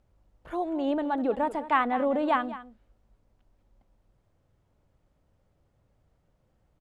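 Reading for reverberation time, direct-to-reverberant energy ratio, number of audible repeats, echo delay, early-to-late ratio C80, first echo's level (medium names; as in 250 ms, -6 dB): no reverb, no reverb, 1, 205 ms, no reverb, -15.0 dB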